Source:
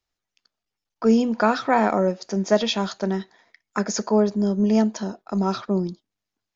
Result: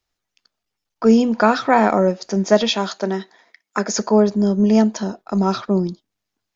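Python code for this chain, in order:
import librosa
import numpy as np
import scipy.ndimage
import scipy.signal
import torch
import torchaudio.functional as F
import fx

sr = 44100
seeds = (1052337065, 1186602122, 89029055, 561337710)

y = fx.highpass(x, sr, hz=230.0, slope=12, at=(2.69, 3.97))
y = y * librosa.db_to_amplitude(4.5)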